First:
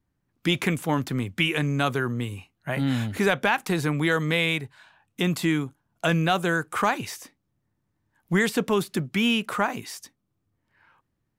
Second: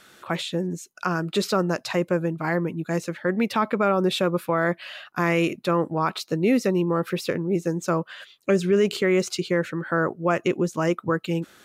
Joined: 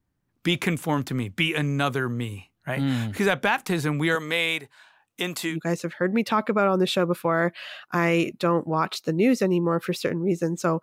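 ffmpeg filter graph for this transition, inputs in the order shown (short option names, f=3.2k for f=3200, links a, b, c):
-filter_complex "[0:a]asettb=1/sr,asplit=3[a][b][c];[a]atrim=end=4.154[d];[b]atrim=start=4.15:end=5.57,asetpts=PTS-STARTPTS,afade=t=in:d=0.004:c=qsin,afade=t=out:st=1.416:d=0.004:c=qsin,bass=f=250:g=-14,treble=f=4k:g=2[e];[c]atrim=start=5.566[f];[d][e]acrossfade=d=0.004:c1=hsin:c2=qsin[g];[g][f]acrossfade=d=0.004:c1=qsin:c2=hsin,apad=whole_dur=10.82,atrim=end=10.82,atrim=end=5.57,asetpts=PTS-STARTPTS[h];[1:a]atrim=start=2.71:end=8.06,asetpts=PTS-STARTPTS[i];[h][i]acrossfade=d=0.1:c1=tri:c2=tri"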